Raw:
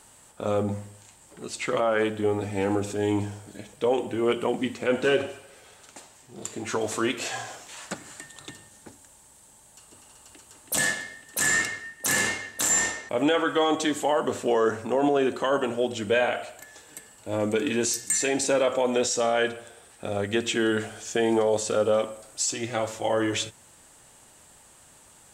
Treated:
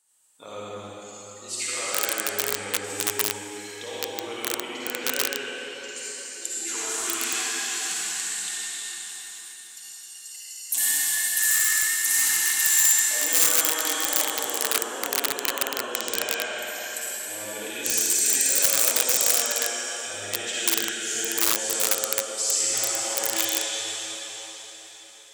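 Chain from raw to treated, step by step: spectral noise reduction 27 dB; repeats whose band climbs or falls 135 ms, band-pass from 1.6 kHz, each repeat 1.4 oct, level -7 dB; compression 2:1, threshold -48 dBFS, peak gain reduction 16 dB; reverberation RT60 4.8 s, pre-delay 46 ms, DRR -9 dB; integer overflow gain 21 dB; tilt EQ +4 dB/octave

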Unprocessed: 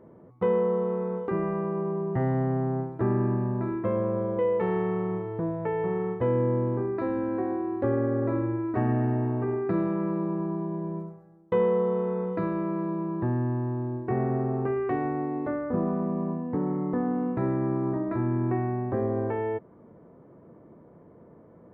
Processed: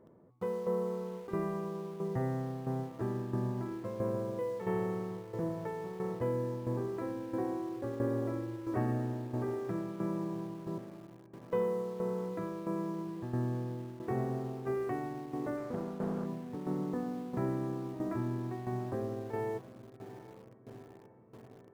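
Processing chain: 10.78–11.53 s: vowel filter a; on a send: echo that smears into a reverb 821 ms, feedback 67%, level -15.5 dB; on the sum: tremolo saw down 1.5 Hz, depth 70%; in parallel at -10.5 dB: bit crusher 7-bit; 15.57–16.26 s: on the sum: loudspeaker Doppler distortion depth 0.57 ms; trim -7.5 dB

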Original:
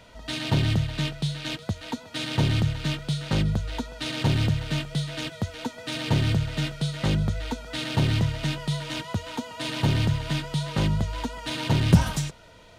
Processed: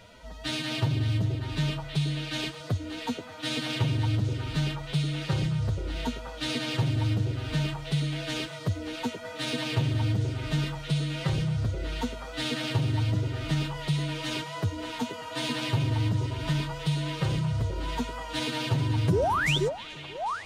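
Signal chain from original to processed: dynamic bell 100 Hz, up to +6 dB, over -35 dBFS, Q 0.86; compression 5:1, threshold -24 dBFS, peak gain reduction 16 dB; painted sound rise, 11.95–12.24 s, 330–3800 Hz -24 dBFS; time stretch by phase-locked vocoder 1.6×; repeats whose band climbs or falls 480 ms, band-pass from 370 Hz, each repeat 1.4 oct, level -0.5 dB

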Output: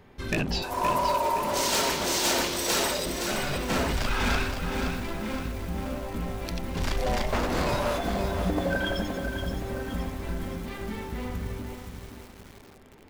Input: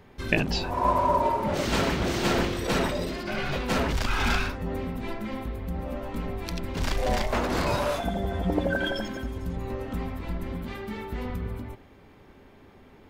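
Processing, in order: 0.62–3.06 s: tone controls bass -12 dB, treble +14 dB; overload inside the chain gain 19.5 dB; bit-crushed delay 520 ms, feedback 55%, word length 7-bit, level -6 dB; trim -1 dB

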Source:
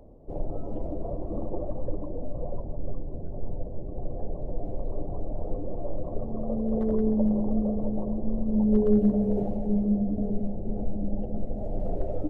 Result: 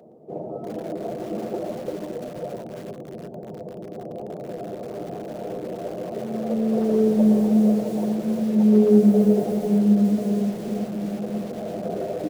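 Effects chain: high-pass 170 Hz 24 dB/octave; band-stop 1 kHz, Q 12; comb of notches 280 Hz; delay 117 ms -11 dB; bit-crushed delay 342 ms, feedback 35%, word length 7-bit, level -9 dB; trim +7 dB

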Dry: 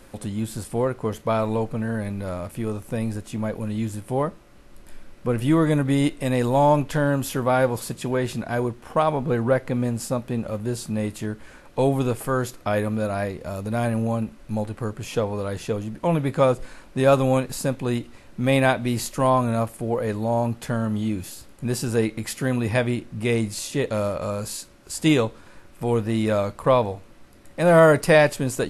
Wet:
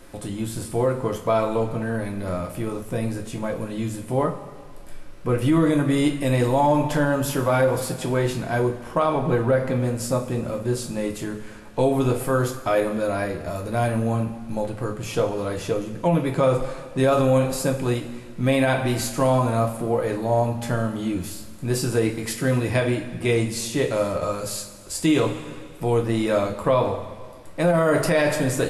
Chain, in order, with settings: reverberation, pre-delay 3 ms, DRR 2 dB; peak limiter -10.5 dBFS, peak gain reduction 11.5 dB

